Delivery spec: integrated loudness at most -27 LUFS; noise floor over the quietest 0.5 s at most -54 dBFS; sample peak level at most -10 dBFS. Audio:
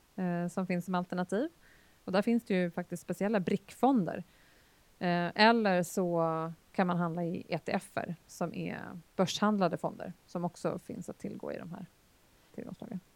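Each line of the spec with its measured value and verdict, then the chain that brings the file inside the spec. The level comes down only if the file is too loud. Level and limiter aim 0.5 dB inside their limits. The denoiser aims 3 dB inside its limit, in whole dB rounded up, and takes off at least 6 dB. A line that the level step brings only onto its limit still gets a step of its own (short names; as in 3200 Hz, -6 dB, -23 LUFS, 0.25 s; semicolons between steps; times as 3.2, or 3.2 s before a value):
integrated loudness -33.0 LUFS: OK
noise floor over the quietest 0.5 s -65 dBFS: OK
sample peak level -9.0 dBFS: fail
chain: limiter -10.5 dBFS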